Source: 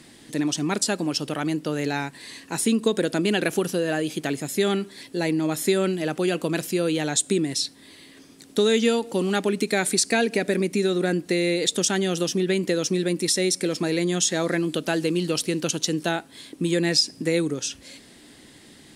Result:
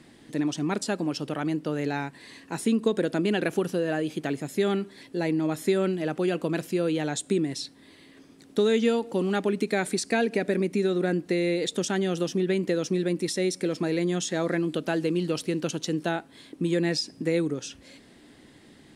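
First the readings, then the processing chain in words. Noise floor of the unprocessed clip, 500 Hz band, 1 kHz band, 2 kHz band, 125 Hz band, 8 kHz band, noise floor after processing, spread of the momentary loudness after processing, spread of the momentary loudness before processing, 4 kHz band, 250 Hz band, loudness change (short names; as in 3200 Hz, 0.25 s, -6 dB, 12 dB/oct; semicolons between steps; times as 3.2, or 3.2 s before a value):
-50 dBFS, -2.0 dB, -3.0 dB, -4.5 dB, -2.0 dB, -11.0 dB, -53 dBFS, 6 LU, 7 LU, -8.5 dB, -2.0 dB, -3.5 dB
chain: high shelf 3300 Hz -10.5 dB; gain -2 dB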